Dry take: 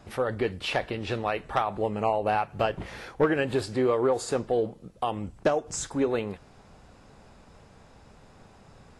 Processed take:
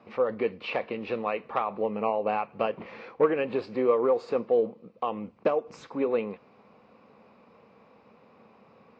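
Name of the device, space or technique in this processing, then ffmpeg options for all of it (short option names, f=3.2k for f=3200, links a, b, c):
kitchen radio: -af "highpass=190,equalizer=f=220:t=q:w=4:g=8,equalizer=f=490:t=q:w=4:g=9,equalizer=f=1.1k:t=q:w=4:g=8,equalizer=f=1.6k:t=q:w=4:g=-5,equalizer=f=2.4k:t=q:w=4:g=7,equalizer=f=3.4k:t=q:w=4:g=-6,lowpass=f=4.1k:w=0.5412,lowpass=f=4.1k:w=1.3066,volume=-5dB"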